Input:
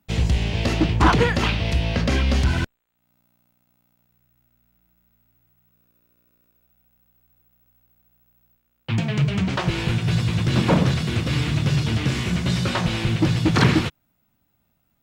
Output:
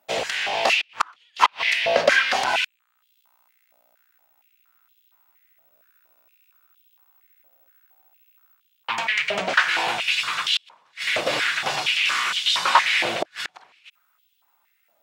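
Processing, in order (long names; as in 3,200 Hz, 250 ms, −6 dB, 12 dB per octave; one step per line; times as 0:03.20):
gate with flip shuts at −10 dBFS, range −39 dB
high-pass on a step sequencer 4.3 Hz 610–3,200 Hz
level +4 dB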